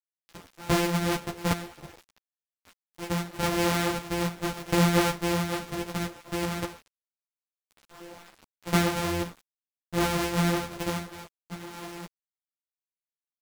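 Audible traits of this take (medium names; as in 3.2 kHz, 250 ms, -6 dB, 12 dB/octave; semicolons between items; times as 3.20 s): a buzz of ramps at a fixed pitch in blocks of 256 samples; random-step tremolo 3.5 Hz; a quantiser's noise floor 8-bit, dither none; a shimmering, thickened sound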